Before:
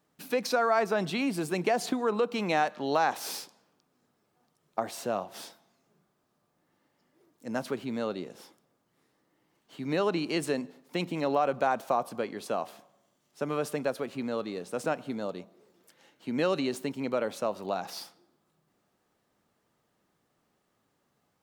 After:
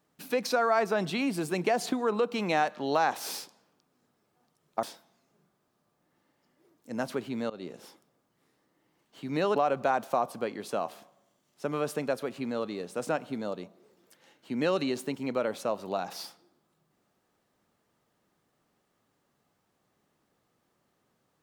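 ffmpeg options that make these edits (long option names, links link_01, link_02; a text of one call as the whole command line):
ffmpeg -i in.wav -filter_complex "[0:a]asplit=4[link_01][link_02][link_03][link_04];[link_01]atrim=end=4.832[link_05];[link_02]atrim=start=5.388:end=8.06,asetpts=PTS-STARTPTS,afade=type=out:start_time=2.668:duration=0.004:curve=hsin:silence=0.0841395[link_06];[link_03]atrim=start=8.06:end=10.122,asetpts=PTS-STARTPTS,afade=type=in:duration=0.28:curve=qsin:silence=0.0841395[link_07];[link_04]atrim=start=11.328[link_08];[link_06][link_07]concat=n=2:v=0:a=1[link_09];[link_05][link_09]acrossfade=duration=0.004:curve1=hsin:curve2=hsin[link_10];[link_10][link_08]acrossfade=duration=0.004:curve1=hsin:curve2=hsin" out.wav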